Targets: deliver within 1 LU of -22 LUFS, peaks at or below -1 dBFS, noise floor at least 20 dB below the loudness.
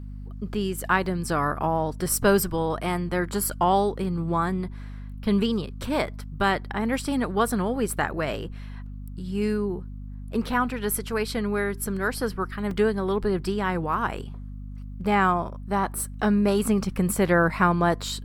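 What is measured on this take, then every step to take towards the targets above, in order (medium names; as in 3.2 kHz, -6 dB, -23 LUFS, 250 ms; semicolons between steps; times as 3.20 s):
dropouts 2; longest dropout 2.9 ms; hum 50 Hz; highest harmonic 250 Hz; hum level -34 dBFS; loudness -25.5 LUFS; peak level -7.0 dBFS; loudness target -22.0 LUFS
-> interpolate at 1.06/12.71 s, 2.9 ms; de-hum 50 Hz, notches 5; trim +3.5 dB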